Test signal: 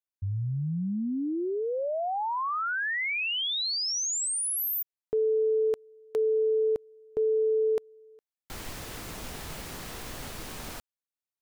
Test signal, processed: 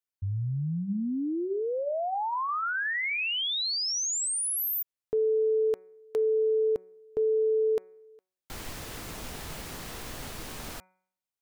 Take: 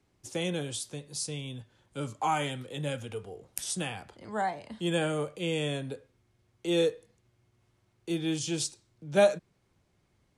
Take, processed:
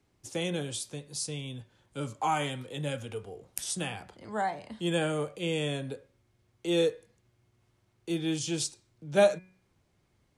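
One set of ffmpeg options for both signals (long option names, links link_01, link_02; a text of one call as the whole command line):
ffmpeg -i in.wav -af "bandreject=frequency=185.6:width_type=h:width=4,bandreject=frequency=371.2:width_type=h:width=4,bandreject=frequency=556.8:width_type=h:width=4,bandreject=frequency=742.4:width_type=h:width=4,bandreject=frequency=928:width_type=h:width=4,bandreject=frequency=1113.6:width_type=h:width=4,bandreject=frequency=1299.2:width_type=h:width=4,bandreject=frequency=1484.8:width_type=h:width=4,bandreject=frequency=1670.4:width_type=h:width=4,bandreject=frequency=1856:width_type=h:width=4,bandreject=frequency=2041.6:width_type=h:width=4,bandreject=frequency=2227.2:width_type=h:width=4,bandreject=frequency=2412.8:width_type=h:width=4" out.wav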